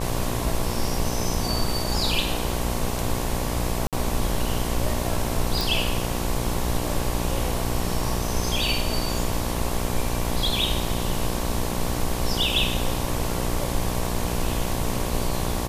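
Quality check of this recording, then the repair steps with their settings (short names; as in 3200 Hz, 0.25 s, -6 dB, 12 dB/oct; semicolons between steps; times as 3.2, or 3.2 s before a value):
buzz 60 Hz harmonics 19 -29 dBFS
3.87–3.93 gap 57 ms
5.61 pop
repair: de-click; de-hum 60 Hz, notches 19; interpolate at 3.87, 57 ms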